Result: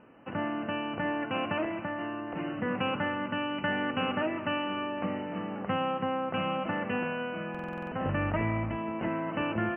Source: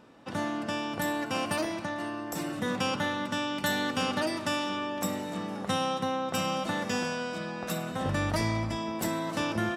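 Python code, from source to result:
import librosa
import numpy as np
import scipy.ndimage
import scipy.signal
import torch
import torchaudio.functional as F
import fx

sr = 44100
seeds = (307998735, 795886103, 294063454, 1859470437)

y = scipy.signal.sosfilt(scipy.signal.cheby1(10, 1.0, 3000.0, 'lowpass', fs=sr, output='sos'), x)
y = fx.buffer_glitch(y, sr, at_s=(7.5,), block=2048, repeats=8)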